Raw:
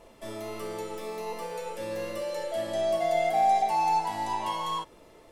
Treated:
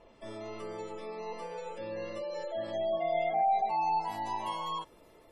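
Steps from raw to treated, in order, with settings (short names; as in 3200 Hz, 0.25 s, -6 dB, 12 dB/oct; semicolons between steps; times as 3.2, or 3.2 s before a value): bell 13000 Hz -10 dB 0.63 oct, from 4.01 s +6 dB; spectral gate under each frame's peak -30 dB strong; gain -4.5 dB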